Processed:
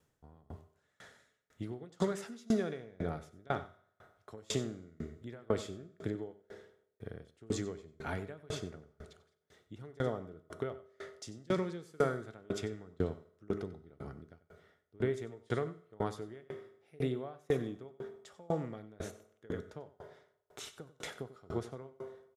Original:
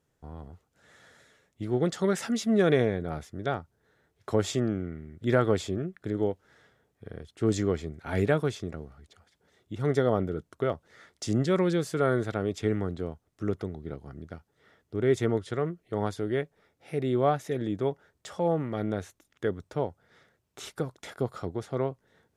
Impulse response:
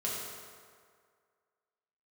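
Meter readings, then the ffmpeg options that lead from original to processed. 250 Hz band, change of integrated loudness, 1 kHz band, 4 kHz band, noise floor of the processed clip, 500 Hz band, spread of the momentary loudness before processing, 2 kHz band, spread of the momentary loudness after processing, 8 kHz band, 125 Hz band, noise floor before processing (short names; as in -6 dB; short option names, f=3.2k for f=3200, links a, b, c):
-10.0 dB, -10.0 dB, -10.0 dB, -7.5 dB, -78 dBFS, -10.0 dB, 18 LU, -9.5 dB, 19 LU, -7.0 dB, -10.5 dB, -76 dBFS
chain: -filter_complex "[0:a]acompressor=threshold=-28dB:ratio=6,asplit=2[a][b];[b]adelay=93.29,volume=-10dB,highshelf=f=4k:g=-2.1[c];[a][c]amix=inputs=2:normalize=0,asplit=2[d][e];[1:a]atrim=start_sample=2205,lowshelf=f=480:g=-7.5[f];[e][f]afir=irnorm=-1:irlink=0,volume=-11dB[g];[d][g]amix=inputs=2:normalize=0,aeval=exprs='val(0)*pow(10,-30*if(lt(mod(2*n/s,1),2*abs(2)/1000),1-mod(2*n/s,1)/(2*abs(2)/1000),(mod(2*n/s,1)-2*abs(2)/1000)/(1-2*abs(2)/1000))/20)':c=same,volume=2dB"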